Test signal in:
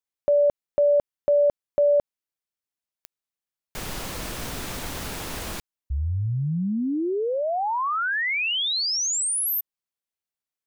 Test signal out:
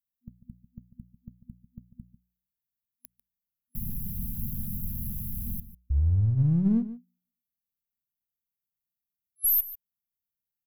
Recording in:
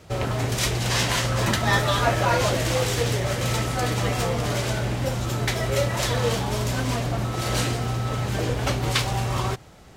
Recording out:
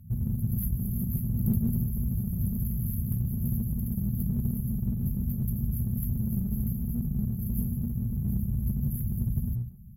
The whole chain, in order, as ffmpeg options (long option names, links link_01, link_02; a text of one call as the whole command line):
ffmpeg -i in.wav -filter_complex "[0:a]bandreject=frequency=60.21:width_type=h:width=4,bandreject=frequency=120.42:width_type=h:width=4,bandreject=frequency=180.63:width_type=h:width=4,afftfilt=real='re*(1-between(b*sr/4096,240,11000))':imag='im*(1-between(b*sr/4096,240,11000))':win_size=4096:overlap=0.75,asplit=2[link_01][link_02];[link_02]aeval=exprs='clip(val(0),-1,0.0178)':channel_layout=same,volume=-5dB[link_03];[link_01][link_03]amix=inputs=2:normalize=0,asplit=2[link_04][link_05];[link_05]adelay=145.8,volume=-14dB,highshelf=frequency=4000:gain=-3.28[link_06];[link_04][link_06]amix=inputs=2:normalize=0" out.wav